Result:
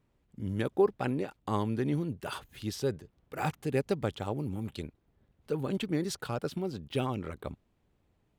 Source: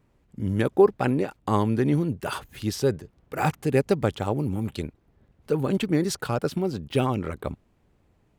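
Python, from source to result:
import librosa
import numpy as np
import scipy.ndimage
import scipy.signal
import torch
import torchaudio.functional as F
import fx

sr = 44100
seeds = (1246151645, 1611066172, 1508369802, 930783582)

y = fx.peak_eq(x, sr, hz=3500.0, db=3.5, octaves=0.69)
y = y * librosa.db_to_amplitude(-8.0)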